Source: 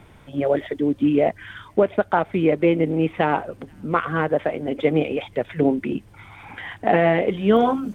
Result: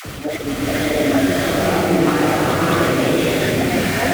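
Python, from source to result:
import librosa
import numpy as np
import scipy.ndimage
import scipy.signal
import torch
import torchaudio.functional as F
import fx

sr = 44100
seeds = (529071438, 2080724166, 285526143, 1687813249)

y = x + 0.5 * 10.0 ** (-21.5 / 20.0) * np.sign(x)
y = scipy.signal.sosfilt(scipy.signal.butter(2, 47.0, 'highpass', fs=sr, output='sos'), y)
y = fx.peak_eq(y, sr, hz=930.0, db=-8.0, octaves=0.25)
y = fx.over_compress(y, sr, threshold_db=-18.0, ratio=-0.5)
y = fx.stretch_vocoder_free(y, sr, factor=0.52)
y = fx.dispersion(y, sr, late='lows', ms=60.0, hz=730.0)
y = fx.wow_flutter(y, sr, seeds[0], rate_hz=2.1, depth_cents=130.0)
y = fx.rev_bloom(y, sr, seeds[1], attack_ms=690, drr_db=-8.0)
y = y * 10.0 ** (-1.0 / 20.0)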